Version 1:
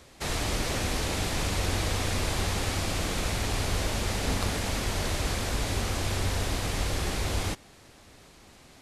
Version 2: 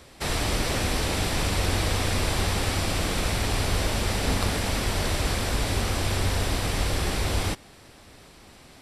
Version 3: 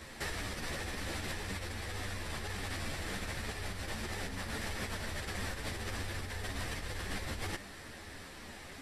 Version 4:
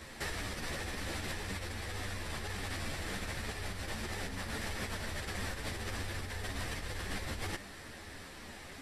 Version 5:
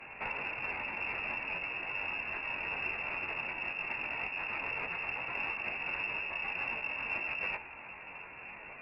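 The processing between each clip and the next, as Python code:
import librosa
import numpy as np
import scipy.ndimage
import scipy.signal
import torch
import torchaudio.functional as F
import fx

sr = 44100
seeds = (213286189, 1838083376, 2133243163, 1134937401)

y1 = fx.notch(x, sr, hz=6600.0, q=9.2)
y1 = y1 * 10.0 ** (3.5 / 20.0)
y2 = fx.peak_eq(y1, sr, hz=1800.0, db=8.5, octaves=0.38)
y2 = fx.over_compress(y2, sr, threshold_db=-32.0, ratio=-1.0)
y2 = fx.ensemble(y2, sr)
y2 = y2 * 10.0 ** (-4.0 / 20.0)
y3 = y2
y4 = fx.doubler(y3, sr, ms=21.0, db=-6.0)
y4 = fx.freq_invert(y4, sr, carrier_hz=2700)
y4 = fx.cheby_harmonics(y4, sr, harmonics=(4,), levels_db=(-34,), full_scale_db=-22.5)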